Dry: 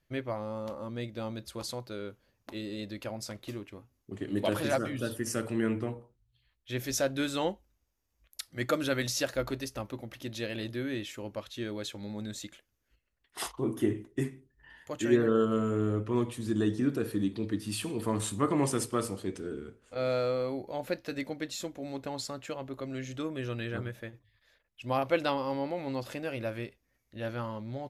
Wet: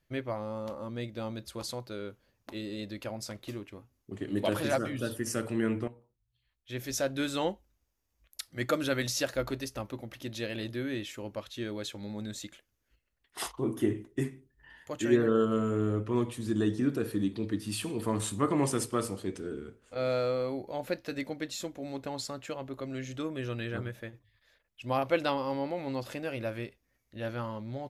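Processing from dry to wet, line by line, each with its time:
5.88–7.33 fade in, from -14 dB

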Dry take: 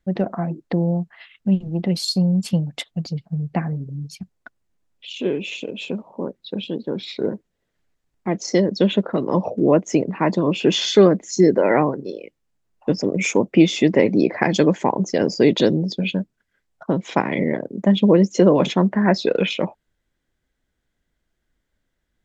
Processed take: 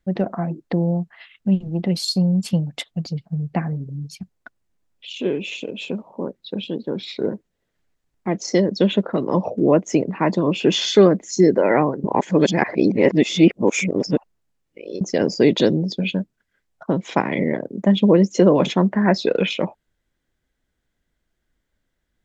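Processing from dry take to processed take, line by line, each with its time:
12.04–15.01 reverse

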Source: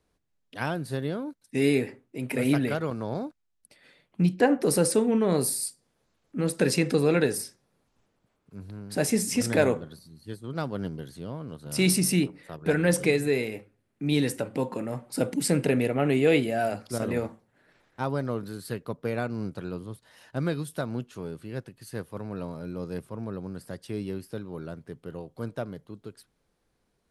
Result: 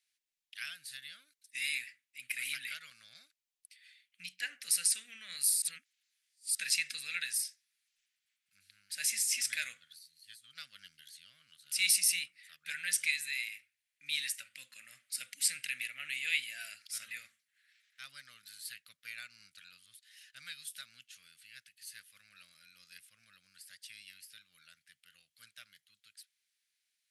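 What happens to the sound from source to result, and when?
5.62–6.55 reverse
whole clip: inverse Chebyshev high-pass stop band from 1000 Hz, stop band 40 dB

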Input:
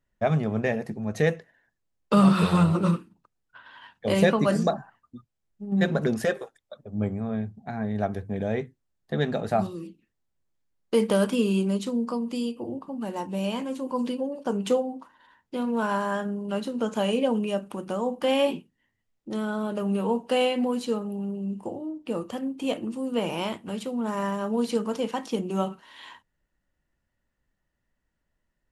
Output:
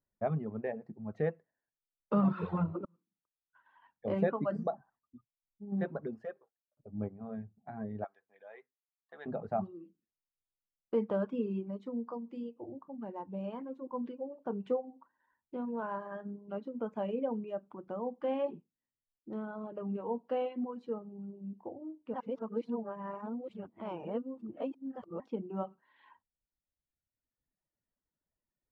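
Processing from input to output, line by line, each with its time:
2.85–4.07 fade in
5.7–6.77 fade out
8.04–9.26 HPF 1100 Hz
22.14–25.2 reverse
whole clip: LPF 1200 Hz 12 dB/oct; reverb removal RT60 1.6 s; low shelf 67 Hz -10.5 dB; gain -8 dB

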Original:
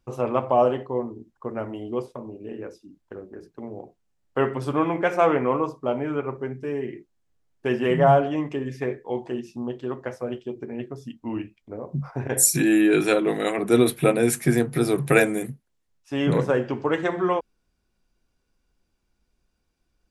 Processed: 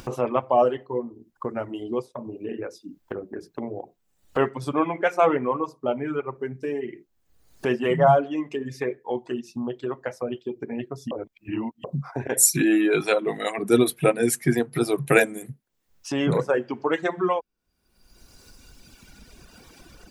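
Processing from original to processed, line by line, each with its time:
11.11–11.84 reverse
whole clip: reverb removal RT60 1.8 s; low shelf 67 Hz -11.5 dB; upward compressor, threshold -25 dBFS; gain +1 dB

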